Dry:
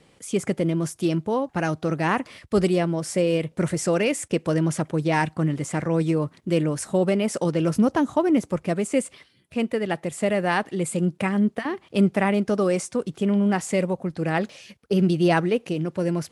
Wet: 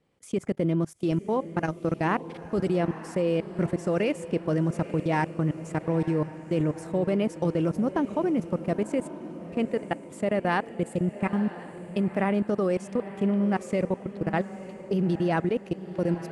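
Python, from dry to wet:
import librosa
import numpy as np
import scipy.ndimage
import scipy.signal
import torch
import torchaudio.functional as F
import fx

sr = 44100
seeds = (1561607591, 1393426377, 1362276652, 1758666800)

p1 = fx.high_shelf(x, sr, hz=2500.0, db=-9.0)
p2 = fx.level_steps(p1, sr, step_db=24)
y = p2 + fx.echo_diffused(p2, sr, ms=926, feedback_pct=46, wet_db=-13, dry=0)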